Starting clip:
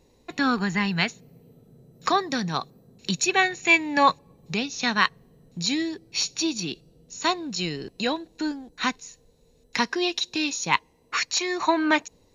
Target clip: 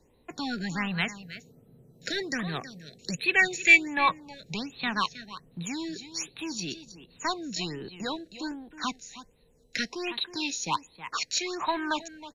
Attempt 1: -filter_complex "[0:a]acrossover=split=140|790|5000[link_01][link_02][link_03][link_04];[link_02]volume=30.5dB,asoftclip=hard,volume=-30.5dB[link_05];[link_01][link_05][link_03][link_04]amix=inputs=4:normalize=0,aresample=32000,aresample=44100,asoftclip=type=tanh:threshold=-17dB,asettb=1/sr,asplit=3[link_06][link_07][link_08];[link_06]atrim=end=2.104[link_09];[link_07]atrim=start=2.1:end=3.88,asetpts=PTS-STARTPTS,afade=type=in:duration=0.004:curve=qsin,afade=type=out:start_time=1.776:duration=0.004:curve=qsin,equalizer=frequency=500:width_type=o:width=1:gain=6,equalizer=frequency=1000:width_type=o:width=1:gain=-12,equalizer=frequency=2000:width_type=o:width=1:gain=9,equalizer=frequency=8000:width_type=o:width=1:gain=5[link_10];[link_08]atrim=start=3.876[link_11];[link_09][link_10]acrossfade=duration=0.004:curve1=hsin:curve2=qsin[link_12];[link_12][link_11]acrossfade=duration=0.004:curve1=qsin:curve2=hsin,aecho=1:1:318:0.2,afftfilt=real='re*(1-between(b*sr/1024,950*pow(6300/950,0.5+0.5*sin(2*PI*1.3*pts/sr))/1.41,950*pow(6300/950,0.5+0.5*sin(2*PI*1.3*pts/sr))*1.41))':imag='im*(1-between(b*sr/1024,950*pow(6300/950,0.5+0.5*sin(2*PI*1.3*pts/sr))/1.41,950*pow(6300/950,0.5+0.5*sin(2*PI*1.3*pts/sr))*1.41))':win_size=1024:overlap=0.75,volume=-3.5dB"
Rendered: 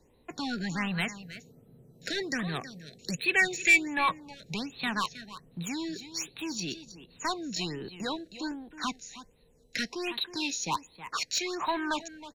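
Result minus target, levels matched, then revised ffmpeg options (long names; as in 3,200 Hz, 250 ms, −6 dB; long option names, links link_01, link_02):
soft clipping: distortion +17 dB
-filter_complex "[0:a]acrossover=split=140|790|5000[link_01][link_02][link_03][link_04];[link_02]volume=30.5dB,asoftclip=hard,volume=-30.5dB[link_05];[link_01][link_05][link_03][link_04]amix=inputs=4:normalize=0,aresample=32000,aresample=44100,asoftclip=type=tanh:threshold=-5dB,asettb=1/sr,asplit=3[link_06][link_07][link_08];[link_06]atrim=end=2.104[link_09];[link_07]atrim=start=2.1:end=3.88,asetpts=PTS-STARTPTS,afade=type=in:duration=0.004:curve=qsin,afade=type=out:start_time=1.776:duration=0.004:curve=qsin,equalizer=frequency=500:width_type=o:width=1:gain=6,equalizer=frequency=1000:width_type=o:width=1:gain=-12,equalizer=frequency=2000:width_type=o:width=1:gain=9,equalizer=frequency=8000:width_type=o:width=1:gain=5[link_10];[link_08]atrim=start=3.876[link_11];[link_09][link_10]acrossfade=duration=0.004:curve1=hsin:curve2=qsin[link_12];[link_12][link_11]acrossfade=duration=0.004:curve1=qsin:curve2=hsin,aecho=1:1:318:0.2,afftfilt=real='re*(1-between(b*sr/1024,950*pow(6300/950,0.5+0.5*sin(2*PI*1.3*pts/sr))/1.41,950*pow(6300/950,0.5+0.5*sin(2*PI*1.3*pts/sr))*1.41))':imag='im*(1-between(b*sr/1024,950*pow(6300/950,0.5+0.5*sin(2*PI*1.3*pts/sr))/1.41,950*pow(6300/950,0.5+0.5*sin(2*PI*1.3*pts/sr))*1.41))':win_size=1024:overlap=0.75,volume=-3.5dB"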